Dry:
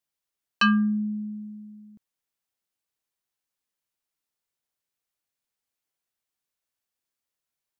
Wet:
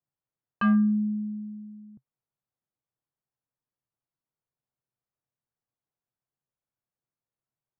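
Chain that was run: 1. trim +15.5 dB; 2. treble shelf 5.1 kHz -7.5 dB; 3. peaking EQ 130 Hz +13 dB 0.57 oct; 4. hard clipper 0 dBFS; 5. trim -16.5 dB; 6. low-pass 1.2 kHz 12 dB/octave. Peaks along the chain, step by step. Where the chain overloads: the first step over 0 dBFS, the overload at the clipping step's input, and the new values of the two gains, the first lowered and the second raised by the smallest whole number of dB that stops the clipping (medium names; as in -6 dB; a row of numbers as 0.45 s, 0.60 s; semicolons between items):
+1.5 dBFS, +1.5 dBFS, +3.5 dBFS, 0.0 dBFS, -16.5 dBFS, -16.5 dBFS; step 1, 3.5 dB; step 1 +11.5 dB, step 5 -12.5 dB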